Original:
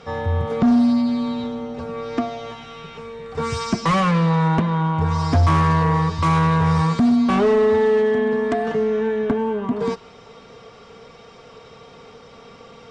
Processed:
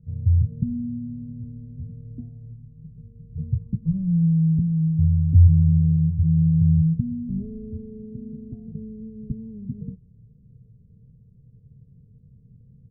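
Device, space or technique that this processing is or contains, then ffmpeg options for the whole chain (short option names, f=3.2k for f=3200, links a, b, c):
the neighbour's flat through the wall: -af "lowpass=f=180:w=0.5412,lowpass=f=180:w=1.3066,equalizer=f=120:t=o:w=0.61:g=7,aecho=1:1:1.9:0.39"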